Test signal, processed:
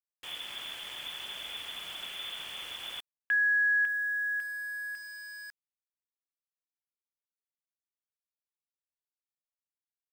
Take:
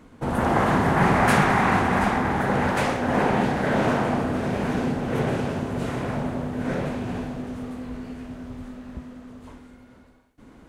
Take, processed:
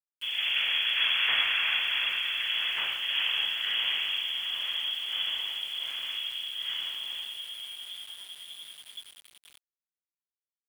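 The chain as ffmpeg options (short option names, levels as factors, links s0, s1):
-af "lowpass=f=3000:t=q:w=0.5098,lowpass=f=3000:t=q:w=0.6013,lowpass=f=3000:t=q:w=0.9,lowpass=f=3000:t=q:w=2.563,afreqshift=-3500,bandreject=f=68.69:t=h:w=4,bandreject=f=137.38:t=h:w=4,bandreject=f=206.07:t=h:w=4,bandreject=f=274.76:t=h:w=4,bandreject=f=343.45:t=h:w=4,bandreject=f=412.14:t=h:w=4,bandreject=f=480.83:t=h:w=4,bandreject=f=549.52:t=h:w=4,bandreject=f=618.21:t=h:w=4,bandreject=f=686.9:t=h:w=4,bandreject=f=755.59:t=h:w=4,bandreject=f=824.28:t=h:w=4,bandreject=f=892.97:t=h:w=4,bandreject=f=961.66:t=h:w=4,bandreject=f=1030.35:t=h:w=4,bandreject=f=1099.04:t=h:w=4,bandreject=f=1167.73:t=h:w=4,bandreject=f=1236.42:t=h:w=4,bandreject=f=1305.11:t=h:w=4,bandreject=f=1373.8:t=h:w=4,bandreject=f=1442.49:t=h:w=4,bandreject=f=1511.18:t=h:w=4,bandreject=f=1579.87:t=h:w=4,bandreject=f=1648.56:t=h:w=4,bandreject=f=1717.25:t=h:w=4,bandreject=f=1785.94:t=h:w=4,bandreject=f=1854.63:t=h:w=4,bandreject=f=1923.32:t=h:w=4,bandreject=f=1992.01:t=h:w=4,bandreject=f=2060.7:t=h:w=4,bandreject=f=2129.39:t=h:w=4,bandreject=f=2198.08:t=h:w=4,bandreject=f=2266.77:t=h:w=4,bandreject=f=2335.46:t=h:w=4,bandreject=f=2404.15:t=h:w=4,bandreject=f=2472.84:t=h:w=4,bandreject=f=2541.53:t=h:w=4,aeval=exprs='val(0)*gte(abs(val(0)),0.015)':c=same,volume=0.422"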